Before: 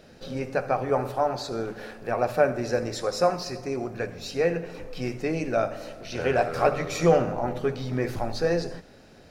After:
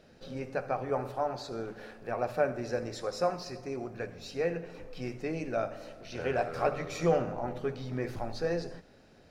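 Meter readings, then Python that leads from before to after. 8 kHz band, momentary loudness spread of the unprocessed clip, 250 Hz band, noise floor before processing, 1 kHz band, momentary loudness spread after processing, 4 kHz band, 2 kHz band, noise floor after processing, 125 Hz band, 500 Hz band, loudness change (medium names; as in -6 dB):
-9.0 dB, 11 LU, -7.0 dB, -51 dBFS, -7.0 dB, 11 LU, -8.5 dB, -7.5 dB, -58 dBFS, -7.0 dB, -7.0 dB, -7.0 dB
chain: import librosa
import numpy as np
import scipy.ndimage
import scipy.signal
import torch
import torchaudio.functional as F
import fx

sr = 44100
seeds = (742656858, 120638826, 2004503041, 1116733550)

y = fx.high_shelf(x, sr, hz=7200.0, db=-5.0)
y = y * librosa.db_to_amplitude(-7.0)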